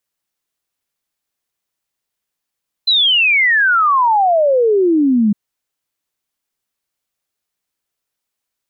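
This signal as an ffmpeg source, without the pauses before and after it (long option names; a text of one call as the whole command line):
ffmpeg -f lavfi -i "aevalsrc='0.335*clip(min(t,2.46-t)/0.01,0,1)*sin(2*PI*4100*2.46/log(200/4100)*(exp(log(200/4100)*t/2.46)-1))':duration=2.46:sample_rate=44100" out.wav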